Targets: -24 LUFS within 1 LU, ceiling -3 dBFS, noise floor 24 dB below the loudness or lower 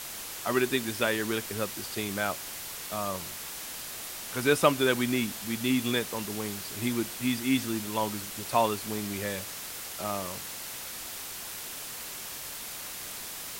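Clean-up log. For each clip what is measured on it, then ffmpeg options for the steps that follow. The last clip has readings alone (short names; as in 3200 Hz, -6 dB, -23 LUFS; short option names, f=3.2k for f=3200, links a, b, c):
noise floor -40 dBFS; noise floor target -55 dBFS; loudness -31.0 LUFS; peak -7.0 dBFS; loudness target -24.0 LUFS
-> -af "afftdn=nr=15:nf=-40"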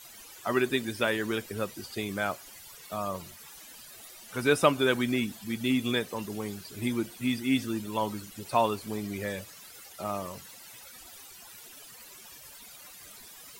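noise floor -50 dBFS; noise floor target -55 dBFS
-> -af "afftdn=nr=6:nf=-50"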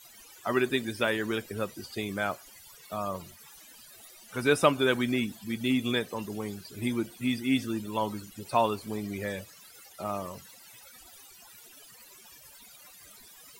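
noise floor -53 dBFS; noise floor target -55 dBFS
-> -af "afftdn=nr=6:nf=-53"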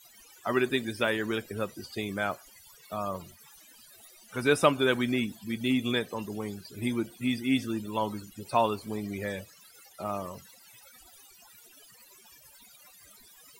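noise floor -56 dBFS; loudness -30.5 LUFS; peak -7.0 dBFS; loudness target -24.0 LUFS
-> -af "volume=6.5dB,alimiter=limit=-3dB:level=0:latency=1"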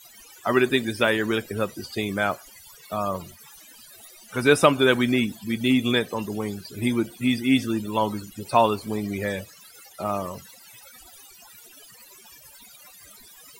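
loudness -24.0 LUFS; peak -3.0 dBFS; noise floor -50 dBFS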